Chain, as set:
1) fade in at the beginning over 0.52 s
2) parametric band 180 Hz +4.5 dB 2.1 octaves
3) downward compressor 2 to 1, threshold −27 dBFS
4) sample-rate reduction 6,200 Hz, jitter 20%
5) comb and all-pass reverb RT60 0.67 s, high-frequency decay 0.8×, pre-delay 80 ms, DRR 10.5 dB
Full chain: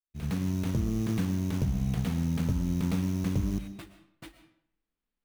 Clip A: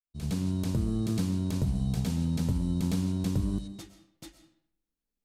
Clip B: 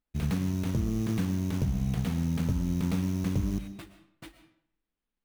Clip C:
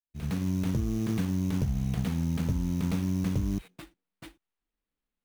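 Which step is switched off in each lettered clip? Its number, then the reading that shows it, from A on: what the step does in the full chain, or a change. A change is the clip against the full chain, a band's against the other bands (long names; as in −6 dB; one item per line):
4, distortion level −15 dB
1, change in momentary loudness spread −2 LU
5, change in momentary loudness spread −2 LU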